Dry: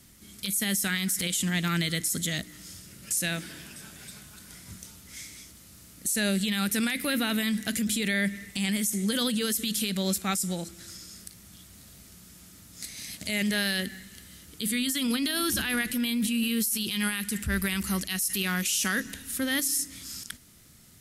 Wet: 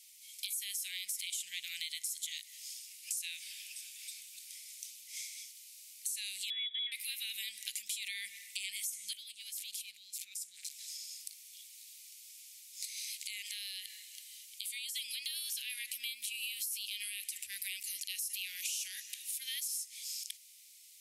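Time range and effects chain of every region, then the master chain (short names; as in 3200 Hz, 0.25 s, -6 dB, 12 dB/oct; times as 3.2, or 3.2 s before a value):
6.5–6.92 bell 750 Hz -11.5 dB 0.57 oct + inverted band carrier 3600 Hz
9.13–10.73 negative-ratio compressor -38 dBFS + core saturation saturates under 3000 Hz
12.96–14.96 HPF 990 Hz + compressor 3:1, threshold -35 dBFS
whole clip: elliptic high-pass 2300 Hz, stop band 50 dB; compressor 4:1, threshold -37 dBFS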